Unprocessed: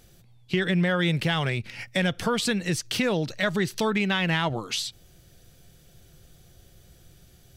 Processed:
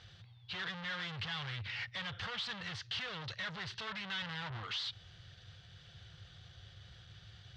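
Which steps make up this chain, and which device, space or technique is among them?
4.22–4.63 s: tilt EQ -2.5 dB/octave; scooped metal amplifier (valve stage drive 41 dB, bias 0.25; cabinet simulation 99–3600 Hz, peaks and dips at 100 Hz +10 dB, 320 Hz +4 dB, 630 Hz -4 dB, 2.4 kHz -8 dB; amplifier tone stack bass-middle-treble 10-0-10); trim +12.5 dB

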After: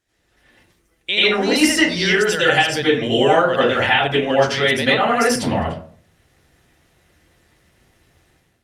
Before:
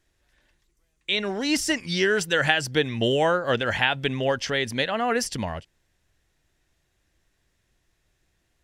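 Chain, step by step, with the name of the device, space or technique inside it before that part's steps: 1.11–1.56 s: treble shelf 3.8 kHz -2.5 dB; harmonic-percussive split harmonic -5 dB; far-field microphone of a smart speaker (reverberation RT60 0.50 s, pre-delay 80 ms, DRR -9 dB; high-pass 88 Hz 6 dB/octave; level rider gain up to 11 dB; trim -1 dB; Opus 48 kbps 48 kHz)

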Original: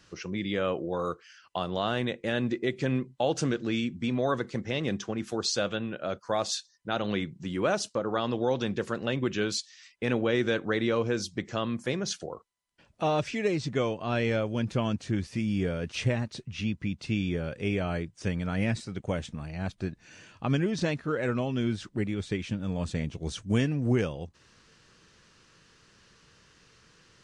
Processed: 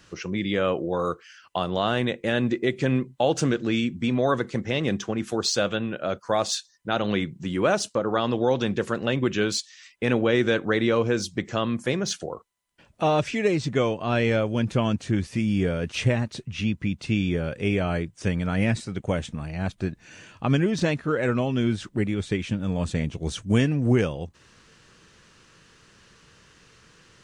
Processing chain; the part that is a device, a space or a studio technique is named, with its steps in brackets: exciter from parts (in parallel at -9 dB: high-pass 4.5 kHz 24 dB/octave + saturation -35 dBFS, distortion -8 dB); on the sum: trim +5 dB

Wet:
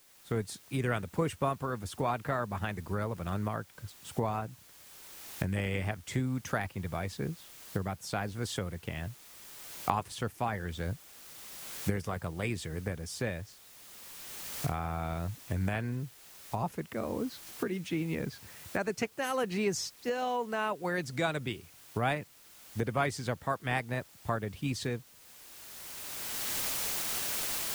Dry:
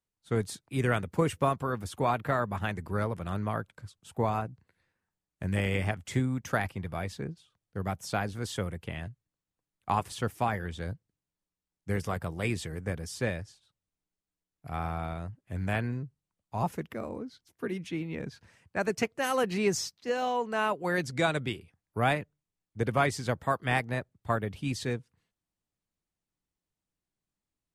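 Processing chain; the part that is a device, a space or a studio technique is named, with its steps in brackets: cheap recorder with automatic gain (white noise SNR 25 dB; recorder AGC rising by 17 dB/s); trim -4 dB

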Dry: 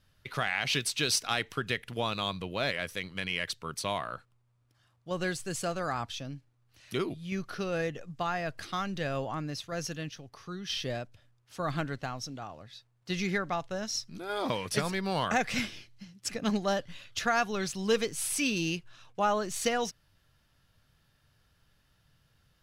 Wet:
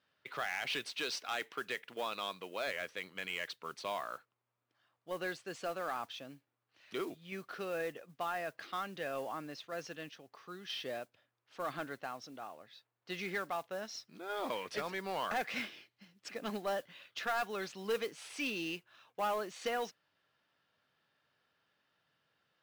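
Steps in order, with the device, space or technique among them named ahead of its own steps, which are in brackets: carbon microphone (band-pass 330–3500 Hz; saturation -24 dBFS, distortion -14 dB; modulation noise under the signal 21 dB); 0.98–2.66 s: high-pass 120 Hz -> 260 Hz 6 dB/octave; trim -3.5 dB

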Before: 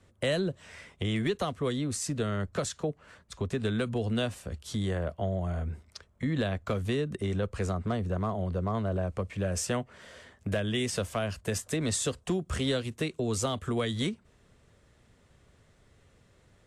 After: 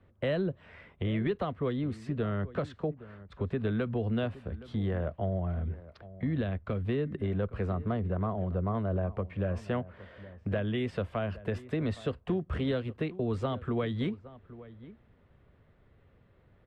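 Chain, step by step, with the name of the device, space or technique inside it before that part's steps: 5.49–6.85 s: dynamic bell 900 Hz, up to -5 dB, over -43 dBFS, Q 0.71; shout across a valley (distance through air 440 m; echo from a far wall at 140 m, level -17 dB)

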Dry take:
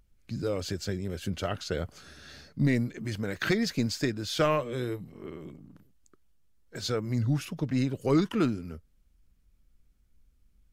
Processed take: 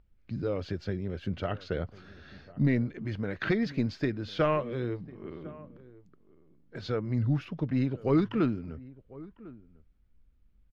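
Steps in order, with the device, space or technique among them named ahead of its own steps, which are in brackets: shout across a valley (distance through air 290 m; echo from a far wall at 180 m, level -20 dB)

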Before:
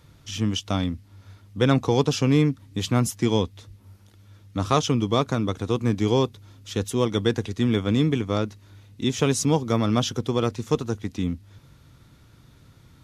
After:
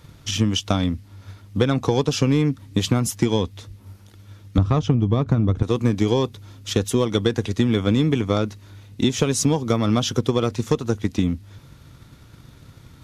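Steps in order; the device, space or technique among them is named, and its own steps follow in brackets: 4.58–5.63 s: RIAA curve playback; drum-bus smash (transient shaper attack +6 dB, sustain +1 dB; compression 12:1, threshold -18 dBFS, peak gain reduction 13.5 dB; saturation -10.5 dBFS, distortion -21 dB); trim +5 dB

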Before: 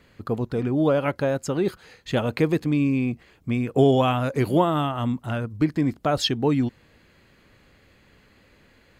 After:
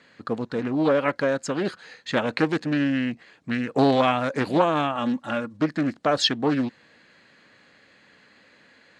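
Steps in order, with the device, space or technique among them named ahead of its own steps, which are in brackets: full-range speaker at full volume (loudspeaker Doppler distortion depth 0.49 ms; cabinet simulation 220–8500 Hz, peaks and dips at 380 Hz -6 dB, 1.7 kHz +6 dB, 4.1 kHz +4 dB); 4.95–5.61 s: comb 3.6 ms, depth 57%; trim +1.5 dB

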